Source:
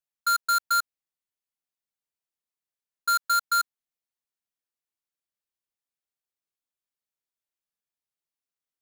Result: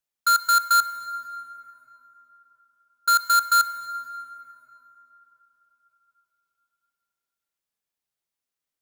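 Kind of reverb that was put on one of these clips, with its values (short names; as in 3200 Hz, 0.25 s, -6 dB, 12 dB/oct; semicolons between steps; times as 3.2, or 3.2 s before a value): plate-style reverb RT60 4 s, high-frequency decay 0.45×, DRR 11.5 dB; gain +4 dB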